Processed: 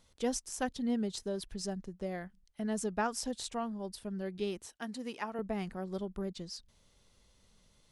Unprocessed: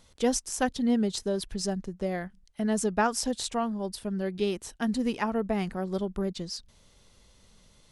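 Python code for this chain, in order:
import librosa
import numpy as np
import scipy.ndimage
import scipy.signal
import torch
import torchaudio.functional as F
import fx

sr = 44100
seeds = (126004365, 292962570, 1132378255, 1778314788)

y = fx.highpass(x, sr, hz=430.0, slope=6, at=(4.66, 5.39))
y = y * 10.0 ** (-7.5 / 20.0)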